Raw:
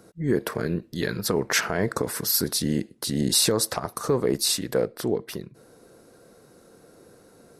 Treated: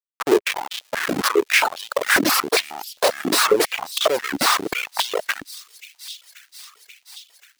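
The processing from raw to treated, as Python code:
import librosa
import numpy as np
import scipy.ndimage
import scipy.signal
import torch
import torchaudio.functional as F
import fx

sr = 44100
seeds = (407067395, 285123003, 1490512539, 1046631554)

p1 = fx.over_compress(x, sr, threshold_db=-32.0, ratio=-1.0)
p2 = x + (p1 * 10.0 ** (1.0 / 20.0))
p3 = fx.tilt_shelf(p2, sr, db=4.5, hz=1300.0, at=(0.7, 1.11), fade=0.02)
p4 = fx.schmitt(p3, sr, flips_db=-20.0)
p5 = p4 + fx.echo_wet_highpass(p4, sr, ms=533, feedback_pct=76, hz=3400.0, wet_db=-13, dry=0)
p6 = fx.dereverb_blind(p5, sr, rt60_s=1.5)
p7 = fx.filter_held_highpass(p6, sr, hz=7.4, low_hz=290.0, high_hz=3300.0)
y = p7 * 10.0 ** (6.0 / 20.0)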